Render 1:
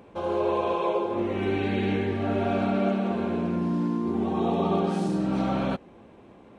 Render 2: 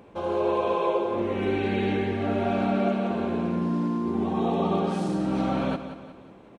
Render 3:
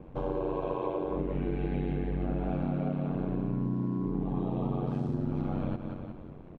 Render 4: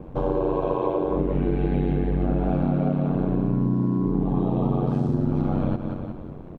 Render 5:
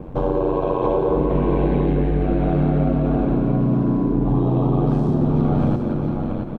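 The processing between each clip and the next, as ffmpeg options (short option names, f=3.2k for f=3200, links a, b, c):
-af "aecho=1:1:180|360|540|720|900:0.282|0.13|0.0596|0.0274|0.0126"
-af "aeval=exprs='val(0)*sin(2*PI*46*n/s)':c=same,aemphasis=mode=reproduction:type=riaa,acompressor=threshold=-27dB:ratio=4,volume=-1.5dB"
-af "equalizer=f=2.4k:w=1.2:g=-5,volume=8.5dB"
-filter_complex "[0:a]asplit=2[a][b];[b]alimiter=limit=-18dB:level=0:latency=1,volume=-2.5dB[c];[a][c]amix=inputs=2:normalize=0,aecho=1:1:678:0.596"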